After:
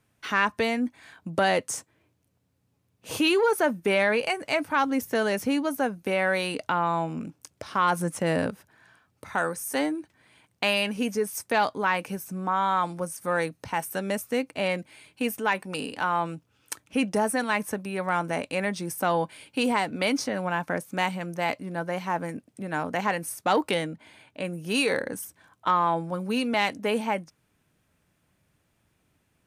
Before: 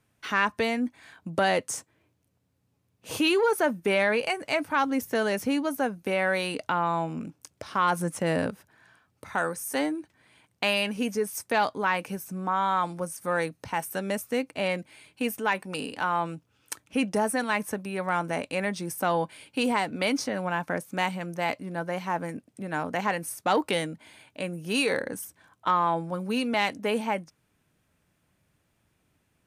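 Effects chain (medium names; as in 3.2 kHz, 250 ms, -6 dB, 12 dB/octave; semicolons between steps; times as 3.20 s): 23.74–24.45 s: treble shelf 5.2 kHz -8 dB; trim +1 dB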